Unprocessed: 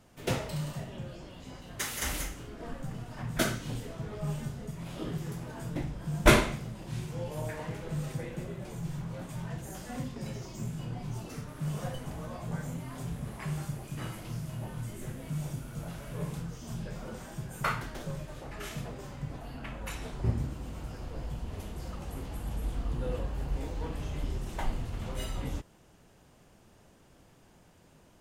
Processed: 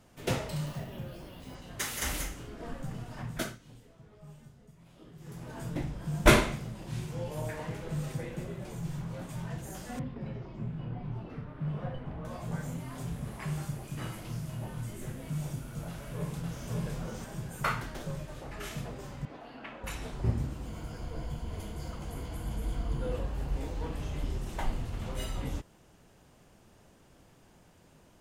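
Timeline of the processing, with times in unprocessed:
0.66–1.55 s: careless resampling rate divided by 3×, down filtered, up hold
3.16–5.58 s: dip -16.5 dB, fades 0.42 s
9.99–12.25 s: distance through air 420 m
15.87–16.68 s: echo throw 560 ms, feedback 30%, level -1.5 dB
19.25–19.84 s: three-band isolator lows -21 dB, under 220 Hz, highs -17 dB, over 4.9 kHz
20.66–23.12 s: rippled EQ curve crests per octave 1.8, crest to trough 7 dB

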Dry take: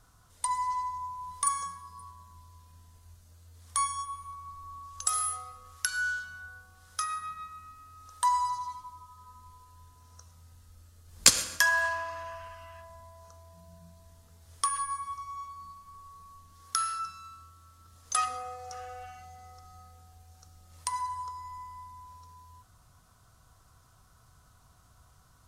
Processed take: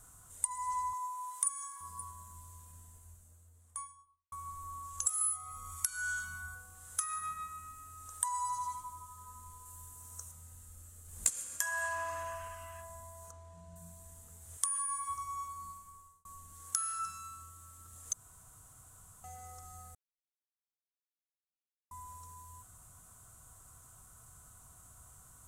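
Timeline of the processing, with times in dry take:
0.93–1.81 s: high-pass 790 Hz
2.51–4.32 s: studio fade out
5.21–6.55 s: comb 0.9 ms, depth 78%
9.65–10.32 s: treble shelf 7.3 kHz +7.5 dB
13.31–13.76 s: low-pass 4.6 kHz
14.57–15.08 s: bass shelf 480 Hz -11.5 dB
15.69–16.25 s: fade out
18.13–19.24 s: room tone
19.95–21.91 s: mute
whole clip: resonant high shelf 6.2 kHz +8.5 dB, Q 3; compression 5:1, threshold -32 dBFS

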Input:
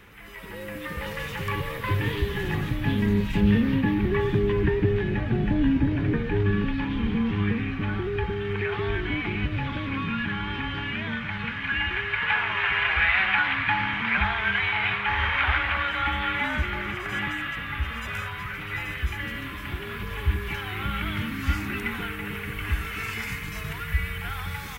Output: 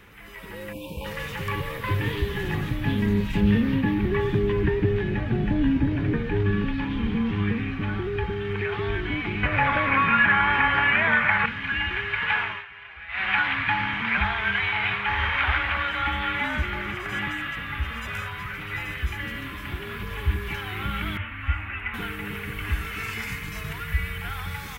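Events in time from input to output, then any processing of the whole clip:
0.72–1.05 s: spectral selection erased 1.1–2.3 kHz
9.43–11.46 s: high-order bell 1.1 kHz +13.5 dB 2.6 oct
12.41–13.32 s: dip -19.5 dB, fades 0.24 s
21.17–21.94 s: FFT filter 100 Hz 0 dB, 140 Hz -23 dB, 280 Hz -12 dB, 400 Hz -16 dB, 590 Hz -2 dB, 2.8 kHz 0 dB, 5.2 kHz -30 dB, 7.9 kHz -23 dB

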